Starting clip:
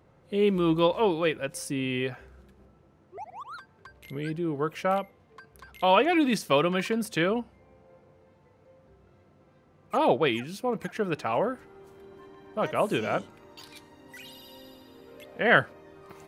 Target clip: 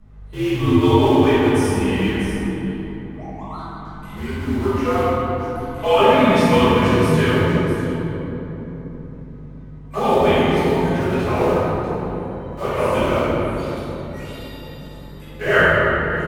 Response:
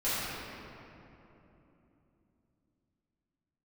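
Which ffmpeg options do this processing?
-filter_complex "[0:a]afreqshift=-69,aeval=exprs='val(0)+0.00631*(sin(2*PI*50*n/s)+sin(2*PI*2*50*n/s)/2+sin(2*PI*3*50*n/s)/3+sin(2*PI*4*50*n/s)/4+sin(2*PI*5*50*n/s)/5)':c=same,bandreject=f=60:t=h:w=6,bandreject=f=120:t=h:w=6,acrossover=split=340|470|3400[a][b][c][d];[b]acrusher=bits=6:mix=0:aa=0.000001[e];[d]aecho=1:1:644:0.376[f];[a][e][c][f]amix=inputs=4:normalize=0[g];[1:a]atrim=start_sample=2205,asetrate=35280,aresample=44100[h];[g][h]afir=irnorm=-1:irlink=0,volume=-3dB"

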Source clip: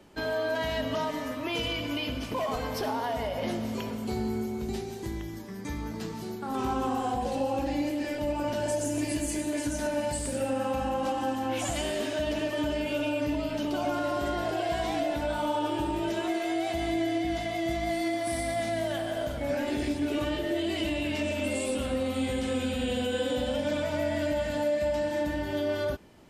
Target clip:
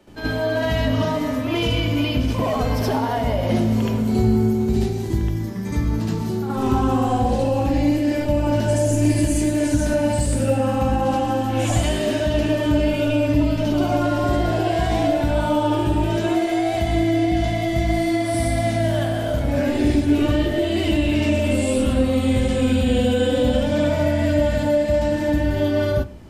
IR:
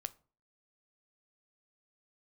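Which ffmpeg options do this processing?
-filter_complex "[0:a]asplit=2[a][b];[b]lowshelf=f=280:g=12[c];[1:a]atrim=start_sample=2205,adelay=73[d];[c][d]afir=irnorm=-1:irlink=0,volume=7.5dB[e];[a][e]amix=inputs=2:normalize=0"

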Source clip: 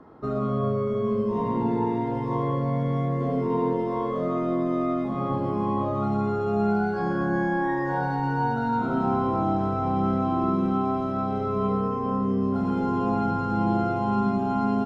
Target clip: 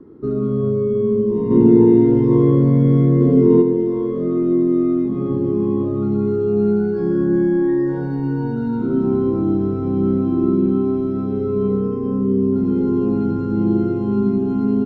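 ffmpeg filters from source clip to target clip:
-filter_complex "[0:a]asplit=3[a][b][c];[a]afade=t=out:st=1.5:d=0.02[d];[b]acontrast=66,afade=t=in:st=1.5:d=0.02,afade=t=out:st=3.61:d=0.02[e];[c]afade=t=in:st=3.61:d=0.02[f];[d][e][f]amix=inputs=3:normalize=0,lowshelf=f=510:t=q:w=3:g=10.5,volume=-6dB"

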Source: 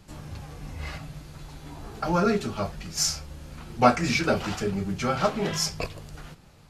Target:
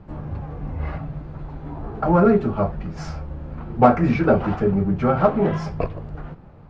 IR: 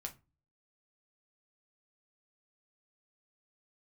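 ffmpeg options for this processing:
-filter_complex "[0:a]lowpass=1.1k,asplit=2[a][b];[b]asoftclip=type=tanh:threshold=-21dB,volume=-9.5dB[c];[a][c]amix=inputs=2:normalize=0,alimiter=level_in=7.5dB:limit=-1dB:release=50:level=0:latency=1,volume=-1dB"

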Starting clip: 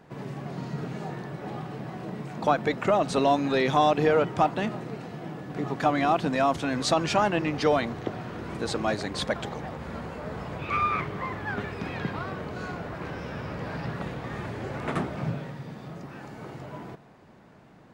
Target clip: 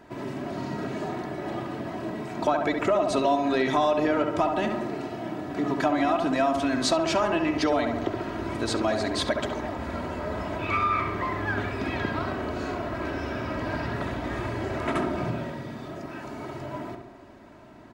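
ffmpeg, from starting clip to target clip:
-filter_complex "[0:a]aecho=1:1:3.1:0.62,asplit=2[a][b];[b]adelay=68,lowpass=f=1.9k:p=1,volume=-5dB,asplit=2[c][d];[d]adelay=68,lowpass=f=1.9k:p=1,volume=0.55,asplit=2[e][f];[f]adelay=68,lowpass=f=1.9k:p=1,volume=0.55,asplit=2[g][h];[h]adelay=68,lowpass=f=1.9k:p=1,volume=0.55,asplit=2[i][j];[j]adelay=68,lowpass=f=1.9k:p=1,volume=0.55,asplit=2[k][l];[l]adelay=68,lowpass=f=1.9k:p=1,volume=0.55,asplit=2[m][n];[n]adelay=68,lowpass=f=1.9k:p=1,volume=0.55[o];[c][e][g][i][k][m][o]amix=inputs=7:normalize=0[p];[a][p]amix=inputs=2:normalize=0,acompressor=threshold=-25dB:ratio=2.5,volume=2.5dB"

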